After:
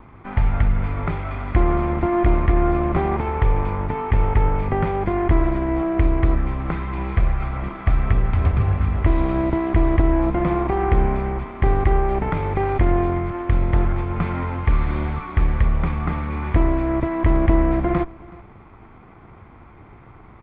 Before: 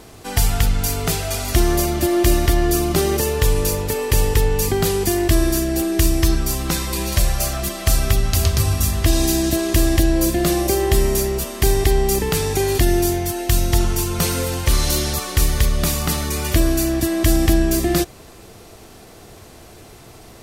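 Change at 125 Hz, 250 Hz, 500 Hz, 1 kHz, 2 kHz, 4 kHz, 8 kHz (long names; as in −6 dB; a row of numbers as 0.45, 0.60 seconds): −0.5 dB, −2.0 dB, −3.5 dB, +2.5 dB, −4.0 dB, below −20 dB, below −40 dB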